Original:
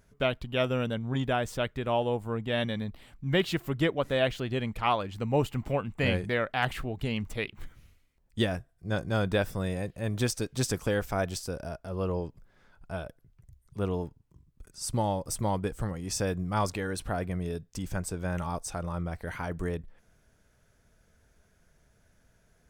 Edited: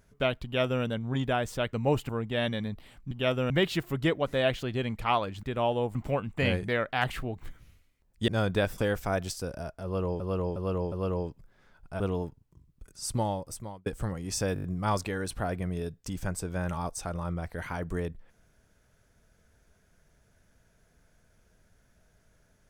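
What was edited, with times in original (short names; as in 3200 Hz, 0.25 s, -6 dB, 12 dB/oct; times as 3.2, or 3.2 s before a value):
0.44–0.83 copy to 3.27
1.73–2.25 swap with 5.2–5.56
7.01–7.56 cut
8.44–9.05 cut
9.55–10.84 cut
11.9–12.26 loop, 4 plays
12.98–13.79 cut
14.95–15.65 fade out linear
16.33 stutter 0.02 s, 6 plays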